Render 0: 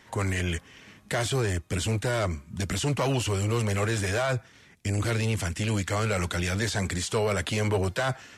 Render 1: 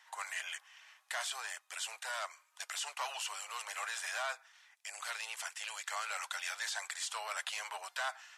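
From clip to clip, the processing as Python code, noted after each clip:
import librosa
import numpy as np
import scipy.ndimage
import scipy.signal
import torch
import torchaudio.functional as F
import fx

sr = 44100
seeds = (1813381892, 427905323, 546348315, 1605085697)

y = scipy.signal.sosfilt(scipy.signal.butter(6, 770.0, 'highpass', fs=sr, output='sos'), x)
y = fx.notch(y, sr, hz=2200.0, q=22.0)
y = y * 10.0 ** (-6.5 / 20.0)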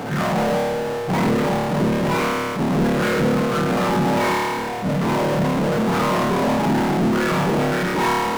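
y = fx.octave_mirror(x, sr, pivot_hz=1200.0)
y = fx.room_flutter(y, sr, wall_m=4.7, rt60_s=1.0)
y = fx.power_curve(y, sr, exponent=0.35)
y = y * 10.0 ** (5.0 / 20.0)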